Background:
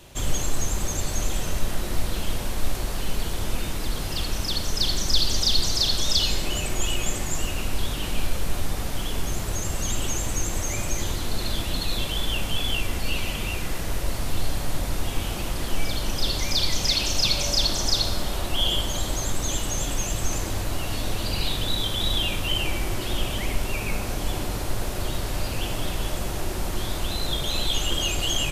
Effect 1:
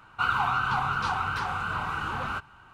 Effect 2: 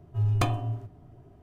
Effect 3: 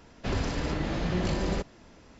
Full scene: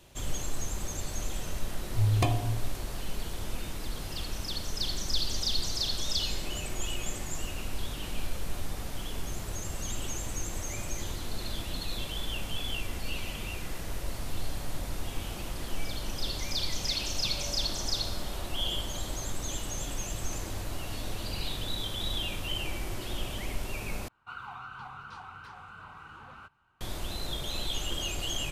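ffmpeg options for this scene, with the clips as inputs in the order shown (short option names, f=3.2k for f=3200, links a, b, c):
-filter_complex "[0:a]volume=-8.5dB[a];[2:a]asuperstop=centerf=1400:order=4:qfactor=2.2[b];[a]asplit=2[c][d];[c]atrim=end=24.084[e];[1:a]atrim=end=2.73,asetpts=PTS-STARTPTS,volume=-17dB[f];[d]atrim=start=26.806[g];[b]atrim=end=1.42,asetpts=PTS-STARTPTS,volume=-0.5dB,afade=t=in:d=0.004:c=hsin,afade=t=out:st=1.416:d=0.004:c=hsin,adelay=1810[h];[e][f]acrossfade=d=0.004:c1=hsin:c2=hsin[i];[i][g]acrossfade=d=0.004:c1=hsin:c2=hsin[j];[j][h]amix=inputs=2:normalize=0"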